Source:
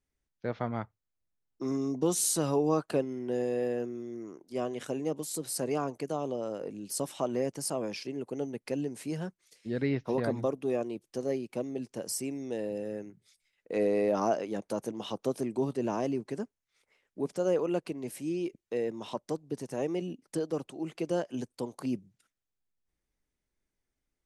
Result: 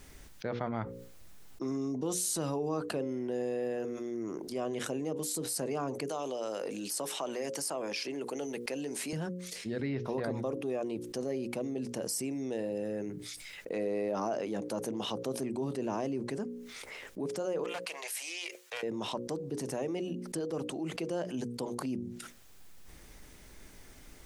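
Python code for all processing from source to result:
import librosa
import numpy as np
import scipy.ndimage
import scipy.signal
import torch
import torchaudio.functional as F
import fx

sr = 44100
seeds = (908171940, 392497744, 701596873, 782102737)

y = fx.chain(x, sr, fx.highpass(hz=740.0, slope=6),
    fx.band_squash(depth_pct=40), at=(6.09, 9.13))
y = fx.chain(y, sr, fx.bessel_highpass(hz=1100.0, order=6),
    fx.doppler_dist(depth_ms=0.18), at=(17.64, 18.83))
y = fx.hum_notches(y, sr, base_hz=60, count=9)
y = fx.env_flatten(y, sr, amount_pct=70)
y = F.gain(torch.from_numpy(y), -7.5).numpy()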